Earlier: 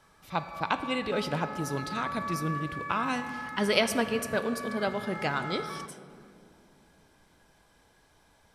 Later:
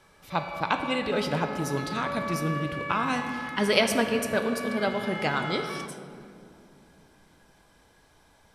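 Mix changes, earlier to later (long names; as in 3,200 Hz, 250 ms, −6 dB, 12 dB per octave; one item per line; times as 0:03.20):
speech: send +6.5 dB
background: remove phaser with its sweep stopped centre 1,200 Hz, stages 4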